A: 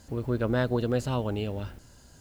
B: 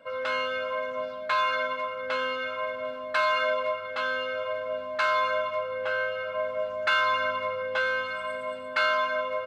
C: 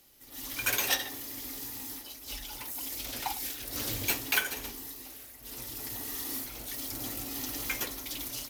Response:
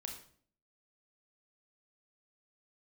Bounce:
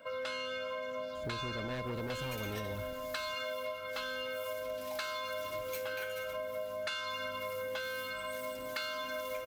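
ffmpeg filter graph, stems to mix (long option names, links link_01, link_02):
-filter_complex "[0:a]volume=28dB,asoftclip=hard,volume=-28dB,adelay=1150,volume=-3dB[link_01];[1:a]highshelf=frequency=5100:gain=10.5,acrossover=split=470|3000[link_02][link_03][link_04];[link_03]acompressor=threshold=-44dB:ratio=2[link_05];[link_02][link_05][link_04]amix=inputs=3:normalize=0,volume=-1dB[link_06];[2:a]acrossover=split=2200[link_07][link_08];[link_07]aeval=exprs='val(0)*(1-0.5/2+0.5/2*cos(2*PI*2.3*n/s))':channel_layout=same[link_09];[link_08]aeval=exprs='val(0)*(1-0.5/2-0.5/2*cos(2*PI*2.3*n/s))':channel_layout=same[link_10];[link_09][link_10]amix=inputs=2:normalize=0,adelay=1650,volume=-12dB[link_11];[link_01][link_06][link_11]amix=inputs=3:normalize=0,acompressor=threshold=-35dB:ratio=6"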